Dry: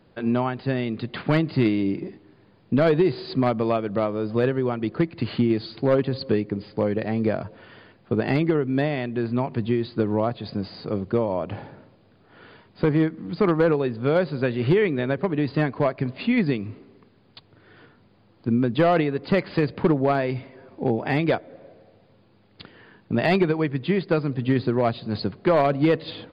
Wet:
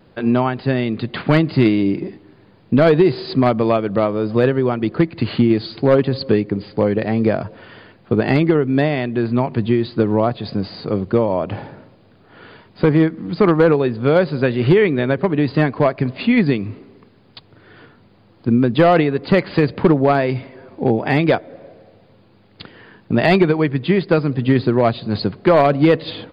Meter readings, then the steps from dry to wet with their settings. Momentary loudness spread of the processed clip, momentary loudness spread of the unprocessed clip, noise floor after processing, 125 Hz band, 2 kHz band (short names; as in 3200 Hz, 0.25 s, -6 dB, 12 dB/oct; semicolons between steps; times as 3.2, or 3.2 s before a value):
8 LU, 8 LU, -51 dBFS, +6.5 dB, +6.5 dB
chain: vibrato 0.71 Hz 14 cents; gain +6.5 dB